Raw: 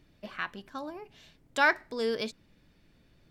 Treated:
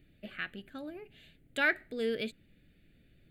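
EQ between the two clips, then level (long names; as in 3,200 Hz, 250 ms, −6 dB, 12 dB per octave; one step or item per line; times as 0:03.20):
phaser with its sweep stopped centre 2,400 Hz, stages 4
0.0 dB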